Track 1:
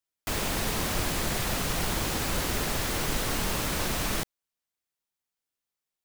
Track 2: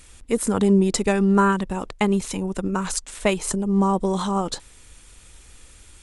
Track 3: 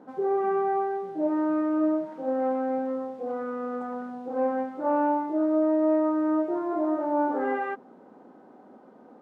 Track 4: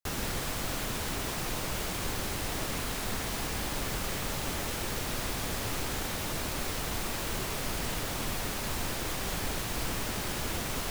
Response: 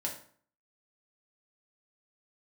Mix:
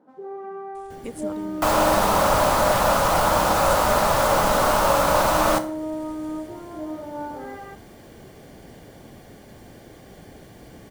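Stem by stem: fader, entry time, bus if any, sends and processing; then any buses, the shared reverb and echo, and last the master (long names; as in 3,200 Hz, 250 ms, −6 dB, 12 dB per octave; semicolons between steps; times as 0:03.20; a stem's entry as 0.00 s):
−1.0 dB, 1.35 s, send −3 dB, flat-topped bell 850 Hz +13.5 dB
−6.0 dB, 0.75 s, no send, transient designer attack +2 dB, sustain −4 dB; downward compressor 3 to 1, threshold −29 dBFS, peak gain reduction 12.5 dB; sample-and-hold tremolo
−11.5 dB, 0.00 s, send −6.5 dB, no processing
−11.5 dB, 0.85 s, no send, tilt shelving filter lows +7 dB, about 1,200 Hz; notch filter 970 Hz, Q 5.1; notch comb filter 1,300 Hz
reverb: on, RT60 0.50 s, pre-delay 3 ms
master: no processing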